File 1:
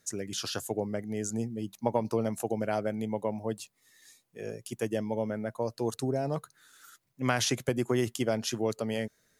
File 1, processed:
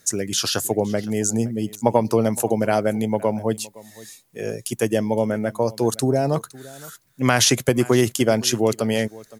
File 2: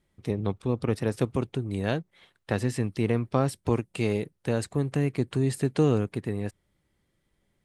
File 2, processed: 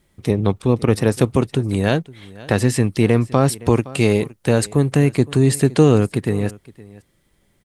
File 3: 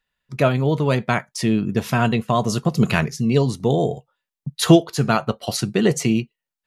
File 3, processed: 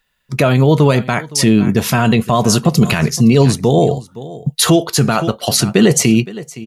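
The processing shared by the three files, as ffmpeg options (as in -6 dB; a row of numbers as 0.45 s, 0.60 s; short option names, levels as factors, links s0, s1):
-filter_complex "[0:a]highshelf=f=6500:g=6,asplit=2[s0][s1];[s1]aecho=0:1:515:0.0891[s2];[s0][s2]amix=inputs=2:normalize=0,alimiter=level_in=3.76:limit=0.891:release=50:level=0:latency=1,volume=0.891"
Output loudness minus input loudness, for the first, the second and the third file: +11.0 LU, +10.5 LU, +7.0 LU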